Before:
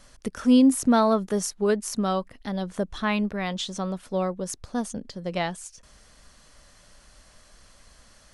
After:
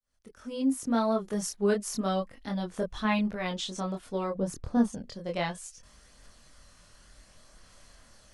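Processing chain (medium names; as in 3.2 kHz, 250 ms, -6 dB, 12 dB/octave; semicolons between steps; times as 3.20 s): fade-in on the opening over 1.73 s; chorus voices 2, 0.32 Hz, delay 24 ms, depth 2.1 ms; 4.35–4.93 s: tilt shelf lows +6.5 dB, about 1.5 kHz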